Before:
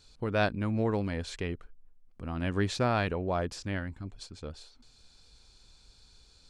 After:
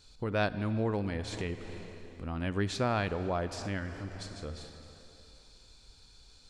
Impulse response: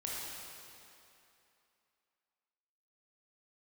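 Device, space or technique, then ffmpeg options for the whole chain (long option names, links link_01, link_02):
ducked reverb: -filter_complex "[0:a]asplit=3[link_01][link_02][link_03];[1:a]atrim=start_sample=2205[link_04];[link_02][link_04]afir=irnorm=-1:irlink=0[link_05];[link_03]apad=whole_len=286362[link_06];[link_05][link_06]sidechaincompress=threshold=-37dB:ratio=8:attack=8.8:release=285,volume=-2.5dB[link_07];[link_01][link_07]amix=inputs=2:normalize=0,volume=-3dB"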